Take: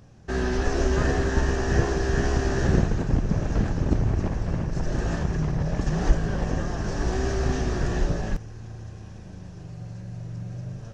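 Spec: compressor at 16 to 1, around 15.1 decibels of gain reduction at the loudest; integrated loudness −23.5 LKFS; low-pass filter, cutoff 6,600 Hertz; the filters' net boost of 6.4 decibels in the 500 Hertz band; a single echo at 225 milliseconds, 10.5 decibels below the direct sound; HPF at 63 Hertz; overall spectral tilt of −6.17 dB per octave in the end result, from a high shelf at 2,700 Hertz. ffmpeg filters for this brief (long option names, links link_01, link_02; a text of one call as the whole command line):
ffmpeg -i in.wav -af "highpass=63,lowpass=6600,equalizer=frequency=500:width_type=o:gain=8.5,highshelf=frequency=2700:gain=7.5,acompressor=threshold=-29dB:ratio=16,aecho=1:1:225:0.299,volume=11dB" out.wav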